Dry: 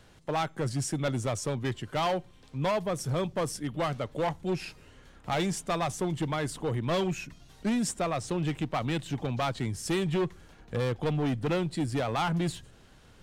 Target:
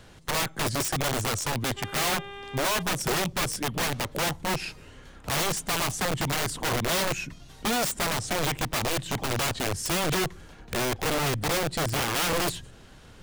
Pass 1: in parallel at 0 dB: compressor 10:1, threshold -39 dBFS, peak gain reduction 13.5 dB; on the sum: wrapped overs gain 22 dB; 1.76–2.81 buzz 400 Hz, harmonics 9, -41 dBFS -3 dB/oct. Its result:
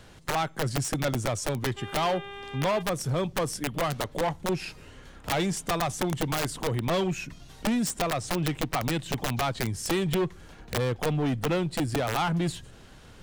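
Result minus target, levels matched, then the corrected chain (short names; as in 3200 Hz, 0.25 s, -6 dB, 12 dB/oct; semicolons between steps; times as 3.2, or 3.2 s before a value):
compressor: peak gain reduction +8.5 dB
in parallel at 0 dB: compressor 10:1, threshold -29.5 dBFS, peak gain reduction 5 dB; on the sum: wrapped overs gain 22 dB; 1.76–2.81 buzz 400 Hz, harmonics 9, -41 dBFS -3 dB/oct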